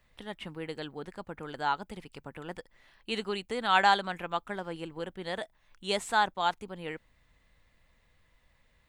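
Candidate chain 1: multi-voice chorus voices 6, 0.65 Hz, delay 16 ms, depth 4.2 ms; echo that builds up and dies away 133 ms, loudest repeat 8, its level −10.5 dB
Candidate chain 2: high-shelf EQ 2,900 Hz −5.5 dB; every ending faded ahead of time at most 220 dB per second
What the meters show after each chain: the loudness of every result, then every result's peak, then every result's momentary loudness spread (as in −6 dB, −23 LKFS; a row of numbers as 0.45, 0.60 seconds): −32.5, −34.5 LKFS; −12.5, −12.0 dBFS; 14, 21 LU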